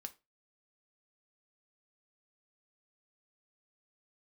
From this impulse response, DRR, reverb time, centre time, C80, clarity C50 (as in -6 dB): 7.5 dB, 0.25 s, 4 ms, 26.5 dB, 19.0 dB